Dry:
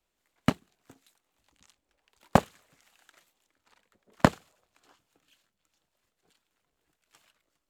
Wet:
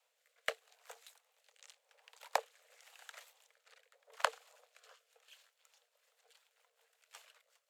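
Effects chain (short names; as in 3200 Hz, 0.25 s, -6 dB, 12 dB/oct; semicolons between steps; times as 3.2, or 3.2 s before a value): Chebyshev high-pass 450 Hz, order 8; compressor 8:1, threshold -36 dBFS, peak gain reduction 20 dB; rotary speaker horn 0.85 Hz, later 5.5 Hz, at 5.68; gain +8 dB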